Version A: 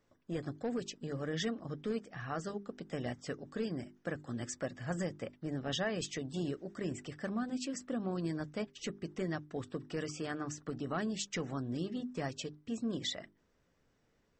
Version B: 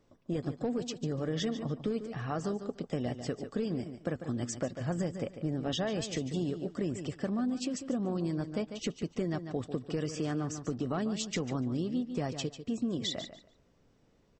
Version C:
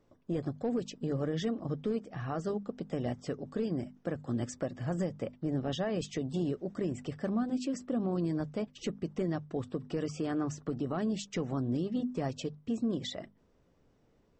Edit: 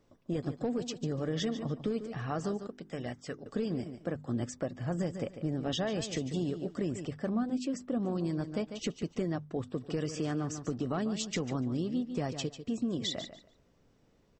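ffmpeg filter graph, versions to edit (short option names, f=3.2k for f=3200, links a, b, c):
-filter_complex "[2:a]asplit=3[a][b][c];[1:a]asplit=5[d][e][f][g][h];[d]atrim=end=2.672[i];[0:a]atrim=start=2.668:end=3.462[j];[e]atrim=start=3.458:end=4.052[k];[a]atrim=start=4.048:end=5.012[l];[f]atrim=start=5.008:end=7.052[m];[b]atrim=start=7.048:end=7.982[n];[g]atrim=start=7.978:end=9.312[o];[c]atrim=start=9.308:end=9.762[p];[h]atrim=start=9.758[q];[i][j]acrossfade=d=0.004:c1=hsin:c2=hsin[r];[r][k]acrossfade=d=0.004:c1=hsin:c2=hsin[s];[s][l]acrossfade=d=0.004:c1=hsin:c2=hsin[t];[t][m]acrossfade=d=0.004:c1=hsin:c2=hsin[u];[u][n]acrossfade=d=0.004:c1=hsin:c2=hsin[v];[v][o]acrossfade=d=0.004:c1=hsin:c2=hsin[w];[w][p]acrossfade=d=0.004:c1=hsin:c2=hsin[x];[x][q]acrossfade=d=0.004:c1=hsin:c2=hsin"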